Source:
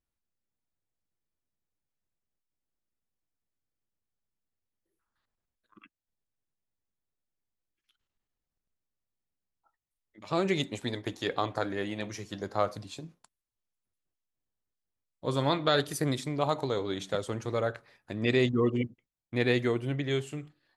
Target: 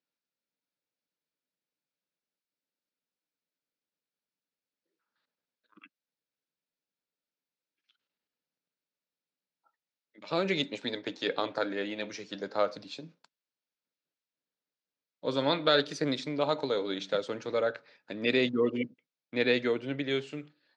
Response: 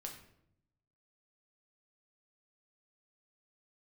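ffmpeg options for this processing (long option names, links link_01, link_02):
-af "highpass=frequency=200:width=0.5412,highpass=frequency=200:width=1.3066,equalizer=frequency=220:width_type=q:width=4:gain=-8,equalizer=frequency=360:width_type=q:width=4:gain=-9,equalizer=frequency=740:width_type=q:width=4:gain=-9,equalizer=frequency=1100:width_type=q:width=4:gain=-9,equalizer=frequency=1900:width_type=q:width=4:gain=-5,equalizer=frequency=3100:width_type=q:width=4:gain=-4,lowpass=frequency=5000:width=0.5412,lowpass=frequency=5000:width=1.3066,volume=5dB"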